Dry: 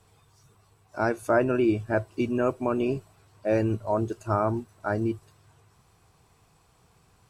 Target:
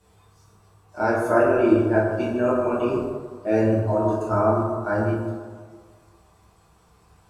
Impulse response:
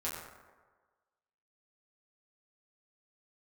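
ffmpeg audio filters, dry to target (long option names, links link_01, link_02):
-filter_complex "[1:a]atrim=start_sample=2205,asetrate=35721,aresample=44100[link_01];[0:a][link_01]afir=irnorm=-1:irlink=0"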